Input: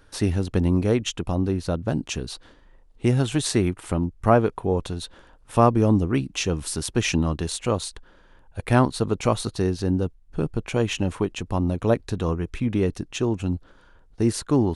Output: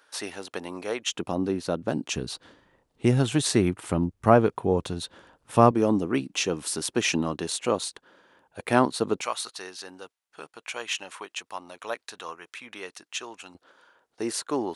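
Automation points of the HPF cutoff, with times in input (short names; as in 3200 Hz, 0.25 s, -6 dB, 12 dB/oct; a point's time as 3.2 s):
660 Hz
from 1.12 s 230 Hz
from 2.16 s 110 Hz
from 5.71 s 250 Hz
from 9.22 s 1100 Hz
from 13.55 s 480 Hz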